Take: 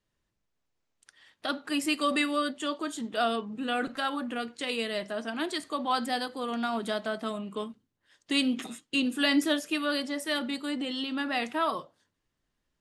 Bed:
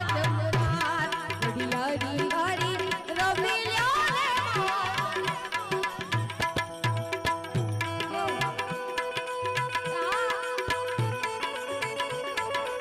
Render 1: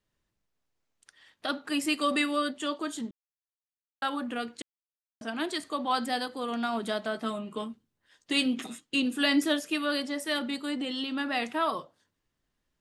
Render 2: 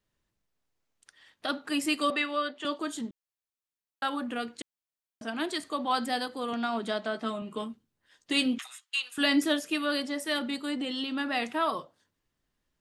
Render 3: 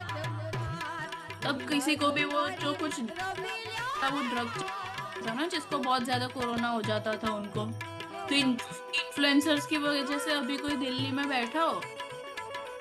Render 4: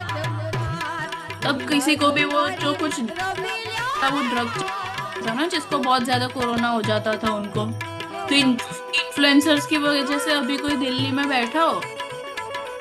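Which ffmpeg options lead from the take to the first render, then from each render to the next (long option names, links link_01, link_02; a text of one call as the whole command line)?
ffmpeg -i in.wav -filter_complex "[0:a]asettb=1/sr,asplit=3[link_01][link_02][link_03];[link_01]atrim=end=7.144[link_04];[link_02]atrim=start=7.14:end=8.46,asetpts=PTS-STARTPTS,afade=type=in:duration=0.004:curve=qsin,afade=type=out:start_time=1.316:duration=0.004:curve=qsin,asplit=2[link_05][link_06];[link_06]adelay=13,volume=-7.5dB[link_07];[link_05][link_07]amix=inputs=2:normalize=0,atrim=end_sample=58212[link_08];[link_03]atrim=start=8.456[link_09];[link_04][link_08]acrossfade=duration=0.004:curve1=hsin:curve2=qsin[link_10];[link_10][link_09]acrossfade=duration=0.004:curve1=qsin:curve2=hsin,asplit=5[link_11][link_12][link_13][link_14][link_15];[link_11]atrim=end=3.11,asetpts=PTS-STARTPTS,afade=type=out:start_time=3.106:duration=0.004:curve=hsin[link_16];[link_12]atrim=start=3.11:end=4.02,asetpts=PTS-STARTPTS,volume=0[link_17];[link_13]atrim=start=4.02:end=4.62,asetpts=PTS-STARTPTS,afade=type=in:duration=0.004:curve=hsin,afade=type=out:start_time=0.596:duration=0.004:curve=hsin[link_18];[link_14]atrim=start=4.62:end=5.21,asetpts=PTS-STARTPTS,volume=0[link_19];[link_15]atrim=start=5.21,asetpts=PTS-STARTPTS,afade=type=in:duration=0.004:curve=hsin[link_20];[link_16][link_17][link_18][link_19][link_20]concat=n=5:v=0:a=1" out.wav
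ffmpeg -i in.wav -filter_complex "[0:a]asettb=1/sr,asplit=3[link_01][link_02][link_03];[link_01]atrim=end=2.104[link_04];[link_02]atrim=start=2.1:end=2.65,asetpts=PTS-STARTPTS,afade=type=in:duration=0.004:curve=qsin,afade=type=out:start_time=0.546:duration=0.004:curve=qsin,acrossover=split=340 4900:gain=0.126 1 0.112[link_05][link_06][link_07];[link_05][link_06][link_07]amix=inputs=3:normalize=0[link_08];[link_03]atrim=start=2.646[link_09];[link_04][link_08]acrossfade=duration=0.004:curve1=hsin:curve2=qsin[link_10];[link_10][link_09]acrossfade=duration=0.004:curve1=qsin:curve2=hsin,asettb=1/sr,asplit=3[link_11][link_12][link_13];[link_11]atrim=end=6.534[link_14];[link_12]atrim=start=6.53:end=7.42,asetpts=PTS-STARTPTS,afade=type=in:duration=0.004:curve=qsin,afade=type=out:start_time=0.886:duration=0.004:curve=qsin,highpass=140,lowpass=7400[link_15];[link_13]atrim=start=7.416[link_16];[link_14][link_15]acrossfade=duration=0.004:curve1=hsin:curve2=qsin[link_17];[link_17][link_16]acrossfade=duration=0.004:curve1=qsin:curve2=hsin,asettb=1/sr,asplit=3[link_18][link_19][link_20];[link_18]atrim=end=8.584[link_21];[link_19]atrim=start=8.58:end=9.18,asetpts=PTS-STARTPTS,afade=type=in:duration=0.004:curve=qsin,afade=type=out:start_time=0.596:duration=0.004:curve=qsin,highpass=frequency=1000:width=0.5412,highpass=frequency=1000:width=1.3066[link_22];[link_20]atrim=start=9.176[link_23];[link_21][link_22]acrossfade=duration=0.004:curve1=hsin:curve2=qsin[link_24];[link_24][link_23]acrossfade=duration=0.004:curve1=qsin:curve2=hsin" out.wav
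ffmpeg -i in.wav -i bed.wav -filter_complex "[1:a]volume=-9dB[link_01];[0:a][link_01]amix=inputs=2:normalize=0" out.wav
ffmpeg -i in.wav -af "volume=9dB" out.wav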